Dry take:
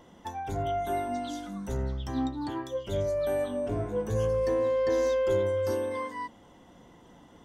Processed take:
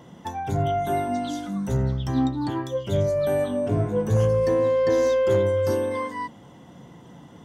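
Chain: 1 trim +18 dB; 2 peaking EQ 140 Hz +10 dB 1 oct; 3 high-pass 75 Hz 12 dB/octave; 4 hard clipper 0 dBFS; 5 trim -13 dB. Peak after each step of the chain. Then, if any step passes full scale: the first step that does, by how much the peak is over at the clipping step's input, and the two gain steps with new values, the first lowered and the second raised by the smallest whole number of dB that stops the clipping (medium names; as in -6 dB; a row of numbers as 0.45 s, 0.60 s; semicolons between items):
+1.0 dBFS, +3.5 dBFS, +3.5 dBFS, 0.0 dBFS, -13.0 dBFS; step 1, 3.5 dB; step 1 +14 dB, step 5 -9 dB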